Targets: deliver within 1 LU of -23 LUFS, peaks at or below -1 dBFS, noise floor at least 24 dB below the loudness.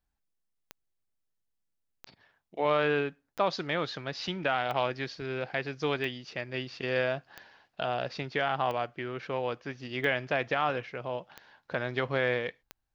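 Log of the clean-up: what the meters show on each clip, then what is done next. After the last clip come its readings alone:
clicks found 10; loudness -31.5 LUFS; peak level -14.0 dBFS; loudness target -23.0 LUFS
-> de-click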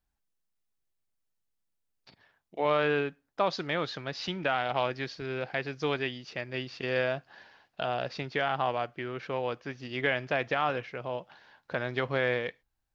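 clicks found 0; loudness -31.5 LUFS; peak level -14.0 dBFS; loudness target -23.0 LUFS
-> trim +8.5 dB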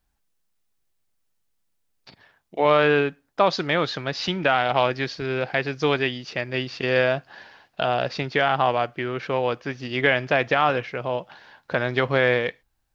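loudness -23.0 LUFS; peak level -5.5 dBFS; noise floor -72 dBFS

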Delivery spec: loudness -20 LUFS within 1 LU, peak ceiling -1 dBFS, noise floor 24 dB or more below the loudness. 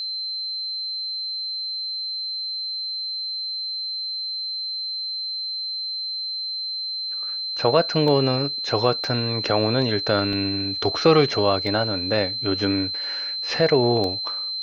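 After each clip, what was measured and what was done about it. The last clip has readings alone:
dropouts 6; longest dropout 1.3 ms; steady tone 4.1 kHz; tone level -26 dBFS; loudness -23.0 LUFS; peak level -4.5 dBFS; loudness target -20.0 LUFS
-> interpolate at 8.08/9.04/9.82/10.33/11.67/14.04 s, 1.3 ms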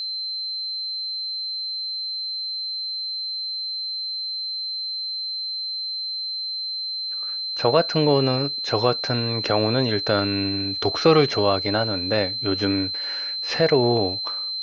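dropouts 0; steady tone 4.1 kHz; tone level -26 dBFS
-> band-stop 4.1 kHz, Q 30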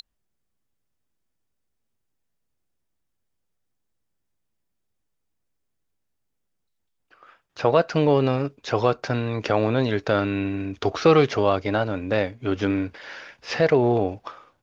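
steady tone not found; loudness -22.5 LUFS; peak level -4.5 dBFS; loudness target -20.0 LUFS
-> trim +2.5 dB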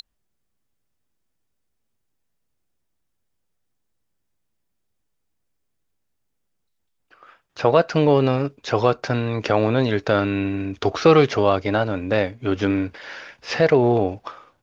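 loudness -20.0 LUFS; peak level -2.0 dBFS; noise floor -74 dBFS

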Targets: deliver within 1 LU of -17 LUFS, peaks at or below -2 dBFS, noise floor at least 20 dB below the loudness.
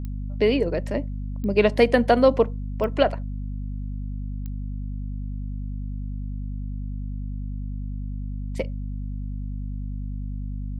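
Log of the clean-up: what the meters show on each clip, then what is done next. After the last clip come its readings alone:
clicks found 4; hum 50 Hz; highest harmonic 250 Hz; hum level -28 dBFS; loudness -26.5 LUFS; peak level -4.5 dBFS; loudness target -17.0 LUFS
-> de-click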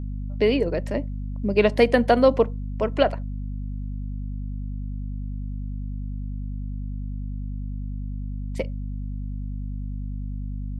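clicks found 0; hum 50 Hz; highest harmonic 250 Hz; hum level -28 dBFS
-> de-hum 50 Hz, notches 5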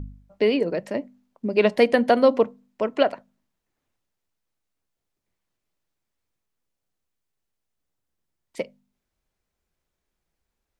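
hum not found; loudness -22.0 LUFS; peak level -5.0 dBFS; loudness target -17.0 LUFS
-> trim +5 dB; peak limiter -2 dBFS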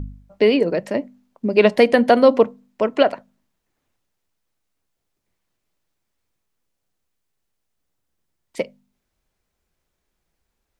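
loudness -17.5 LUFS; peak level -2.0 dBFS; noise floor -77 dBFS

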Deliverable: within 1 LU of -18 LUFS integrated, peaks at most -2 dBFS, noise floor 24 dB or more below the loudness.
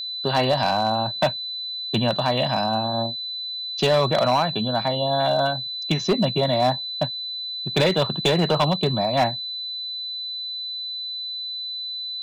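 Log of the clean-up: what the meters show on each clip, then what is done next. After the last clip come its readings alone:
clipped samples 0.8%; clipping level -13.0 dBFS; steady tone 4 kHz; tone level -28 dBFS; loudness -23.0 LUFS; peak level -13.0 dBFS; loudness target -18.0 LUFS
-> clip repair -13 dBFS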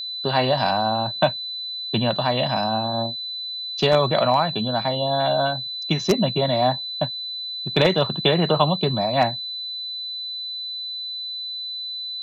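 clipped samples 0.0%; steady tone 4 kHz; tone level -28 dBFS
-> band-stop 4 kHz, Q 30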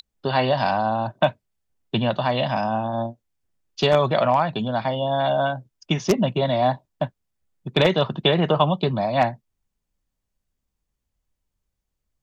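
steady tone not found; loudness -22.5 LUFS; peak level -3.5 dBFS; loudness target -18.0 LUFS
-> trim +4.5 dB; peak limiter -2 dBFS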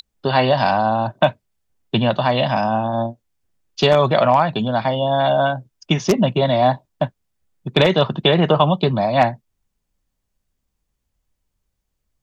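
loudness -18.0 LUFS; peak level -2.0 dBFS; noise floor -76 dBFS

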